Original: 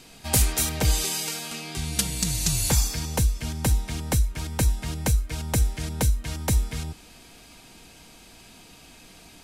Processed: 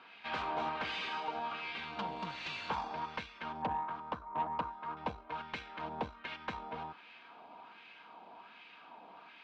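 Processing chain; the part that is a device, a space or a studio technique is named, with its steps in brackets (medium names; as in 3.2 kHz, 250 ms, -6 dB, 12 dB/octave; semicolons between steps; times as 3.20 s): 3.62–4.97 s: resonant high shelf 1.6 kHz -13.5 dB, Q 3; wah-wah guitar rig (wah-wah 1.3 Hz 770–2100 Hz, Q 2.1; valve stage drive 40 dB, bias 0.65; cabinet simulation 90–3600 Hz, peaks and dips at 120 Hz -10 dB, 210 Hz +4 dB, 980 Hz +6 dB, 1.9 kHz -7 dB); trim +8.5 dB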